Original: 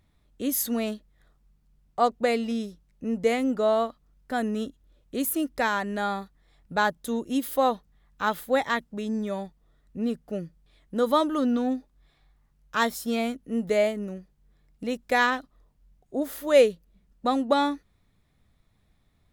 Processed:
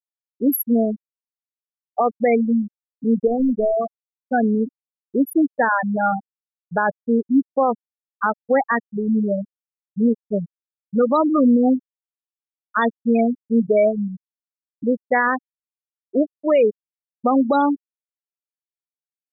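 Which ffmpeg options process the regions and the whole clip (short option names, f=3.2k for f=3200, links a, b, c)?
-filter_complex "[0:a]asettb=1/sr,asplit=3[a][b][c];[a]atrim=end=3.274[d];[b]atrim=start=3.27:end=3.86,asetpts=PTS-STARTPTS,afade=t=in:d=0.004:c=qsin,afade=t=out:st=0.586:d=0.004:c=qsin,aeval=exprs='if(lt(val(0),0),0.708*val(0),val(0))':c=same,lowshelf=f=270:g=4,acompressor=threshold=-25dB:ratio=4:attack=3.2:release=140:knee=1:detection=peak[e];[c]atrim=start=3.856[f];[d][e]acrossfade=d=0.004:c1=hsin:c2=qsin[g];[g][f]acrossfade=d=0.004:c1=qsin:c2=hsin,afftfilt=real='re*gte(hypot(re,im),0.158)':imag='im*gte(hypot(re,im),0.158)':win_size=1024:overlap=0.75,alimiter=level_in=18.5dB:limit=-1dB:release=50:level=0:latency=1,volume=-8dB"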